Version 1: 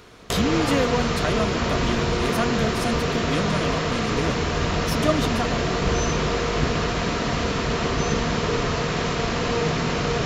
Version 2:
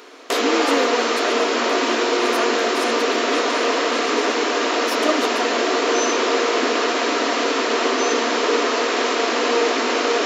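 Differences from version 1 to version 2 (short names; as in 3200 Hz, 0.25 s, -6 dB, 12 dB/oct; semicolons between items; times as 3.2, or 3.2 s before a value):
background +6.0 dB; master: add brick-wall FIR high-pass 240 Hz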